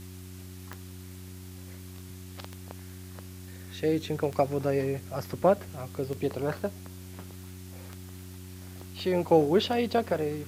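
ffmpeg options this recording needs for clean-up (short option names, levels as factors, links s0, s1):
-af "adeclick=t=4,bandreject=f=92.2:t=h:w=4,bandreject=f=184.4:t=h:w=4,bandreject=f=276.6:t=h:w=4,bandreject=f=368.8:t=h:w=4,afwtdn=0.0025"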